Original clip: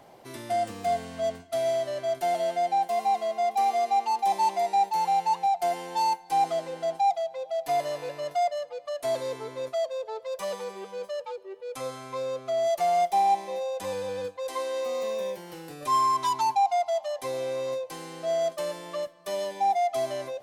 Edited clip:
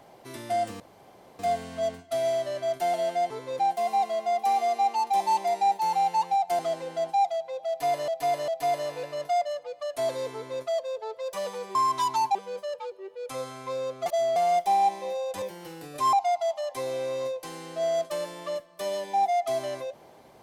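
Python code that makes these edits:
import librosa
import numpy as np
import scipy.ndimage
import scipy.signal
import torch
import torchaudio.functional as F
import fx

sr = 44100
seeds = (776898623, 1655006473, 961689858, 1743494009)

y = fx.edit(x, sr, fx.insert_room_tone(at_s=0.8, length_s=0.59),
    fx.cut(start_s=5.71, length_s=0.74),
    fx.repeat(start_s=7.54, length_s=0.4, count=3),
    fx.duplicate(start_s=9.39, length_s=0.29, to_s=2.71),
    fx.reverse_span(start_s=12.52, length_s=0.3),
    fx.cut(start_s=13.88, length_s=1.41),
    fx.move(start_s=16.0, length_s=0.6, to_s=10.81), tone=tone)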